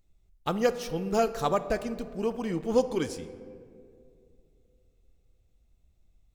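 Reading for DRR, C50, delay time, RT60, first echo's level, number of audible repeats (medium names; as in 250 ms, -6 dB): 11.0 dB, 13.0 dB, no echo, 2.5 s, no echo, no echo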